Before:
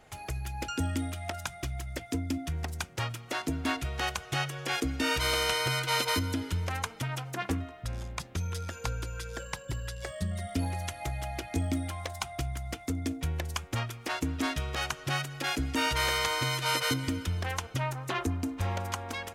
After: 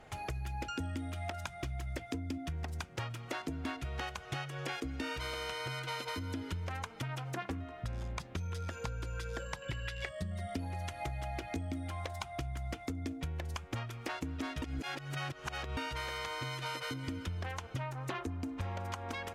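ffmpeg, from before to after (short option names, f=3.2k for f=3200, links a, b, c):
-filter_complex "[0:a]asettb=1/sr,asplit=3[a][b][c];[a]atrim=end=9.624[d];[b]atrim=start=9.62:end=10.09,asetpts=PTS-STARTPTS,afade=t=in:d=0.004:c=qsin,afade=t=out:st=0.466:d=0.004:c=qsin,equalizer=f=2.4k:w=1:g=13[e];[c]atrim=start=10.086[f];[d][e]acrossfade=d=0.004:c1=hsin:c2=qsin[g];[g][f]acrossfade=d=0.004:c1=qsin:c2=hsin,asplit=3[h][i][j];[h]atrim=end=14.622[k];[i]atrim=start=14.618:end=15.772,asetpts=PTS-STARTPTS,areverse[l];[j]atrim=start=15.768[m];[k][l]acrossfade=d=0.004:c1=hsin:c2=hsin[n];[n][m]acrossfade=d=0.004:c1=hsin:c2=hsin,acompressor=threshold=-37dB:ratio=10,aemphasis=mode=reproduction:type=cd,volume=2dB"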